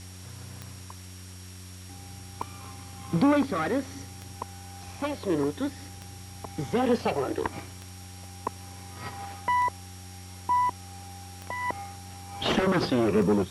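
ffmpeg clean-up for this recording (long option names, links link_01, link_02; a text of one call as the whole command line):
ffmpeg -i in.wav -af "adeclick=threshold=4,bandreject=frequency=92.2:width_type=h:width=4,bandreject=frequency=184.4:width_type=h:width=4,bandreject=frequency=276.6:width_type=h:width=4,bandreject=frequency=368.8:width_type=h:width=4,bandreject=frequency=5600:width=30,afwtdn=0.004" out.wav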